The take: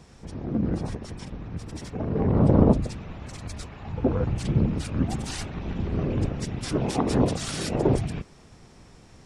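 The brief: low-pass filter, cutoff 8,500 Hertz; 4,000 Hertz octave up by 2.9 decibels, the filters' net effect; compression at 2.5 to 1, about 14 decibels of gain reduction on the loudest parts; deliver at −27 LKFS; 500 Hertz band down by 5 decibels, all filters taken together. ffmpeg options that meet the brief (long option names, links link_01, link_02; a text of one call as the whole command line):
ffmpeg -i in.wav -af "lowpass=8500,equalizer=frequency=500:width_type=o:gain=-6.5,equalizer=frequency=4000:width_type=o:gain=4,acompressor=threshold=-36dB:ratio=2.5,volume=10dB" out.wav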